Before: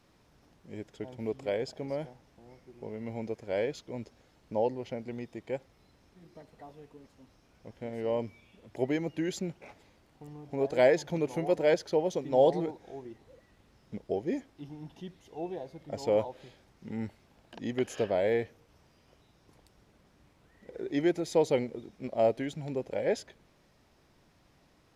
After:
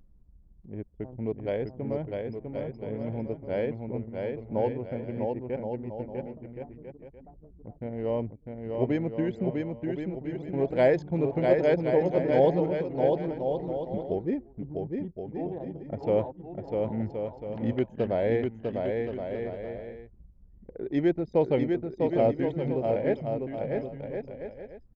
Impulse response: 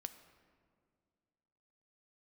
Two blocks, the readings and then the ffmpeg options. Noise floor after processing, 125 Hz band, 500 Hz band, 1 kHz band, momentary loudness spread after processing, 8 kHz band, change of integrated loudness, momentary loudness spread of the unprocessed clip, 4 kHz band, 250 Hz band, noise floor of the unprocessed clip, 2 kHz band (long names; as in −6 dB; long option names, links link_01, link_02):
−55 dBFS, +8.5 dB, +3.5 dB, +2.5 dB, 16 LU, below −15 dB, +2.5 dB, 19 LU, can't be measured, +5.5 dB, −65 dBFS, +0.5 dB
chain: -af "aemphasis=mode=reproduction:type=bsi,anlmdn=0.631,lowshelf=frequency=71:gain=-8,acompressor=mode=upward:threshold=-44dB:ratio=2.5,aecho=1:1:650|1072|1347|1526|1642:0.631|0.398|0.251|0.158|0.1"